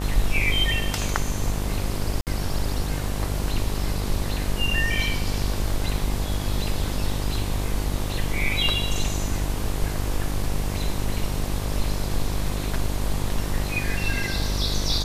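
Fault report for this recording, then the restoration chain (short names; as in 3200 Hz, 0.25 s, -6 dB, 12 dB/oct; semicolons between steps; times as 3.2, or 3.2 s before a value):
buzz 50 Hz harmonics 24 -28 dBFS
2.21–2.27 gap 58 ms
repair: de-hum 50 Hz, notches 24; interpolate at 2.21, 58 ms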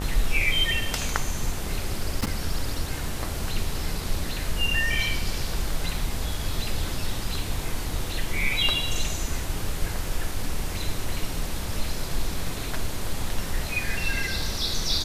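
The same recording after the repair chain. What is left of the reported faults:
none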